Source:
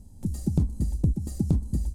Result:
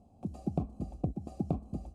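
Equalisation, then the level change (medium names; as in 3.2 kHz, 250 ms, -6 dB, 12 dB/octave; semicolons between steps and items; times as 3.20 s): vowel filter a; bass shelf 500 Hz +11.5 dB; +8.5 dB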